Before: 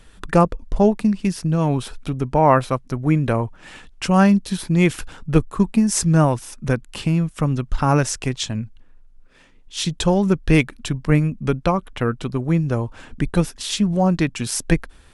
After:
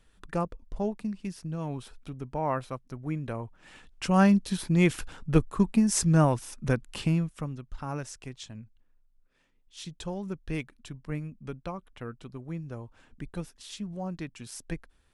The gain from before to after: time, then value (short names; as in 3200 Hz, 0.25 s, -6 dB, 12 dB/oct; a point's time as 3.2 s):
3.37 s -15 dB
4.25 s -6 dB
7.12 s -6 dB
7.58 s -18 dB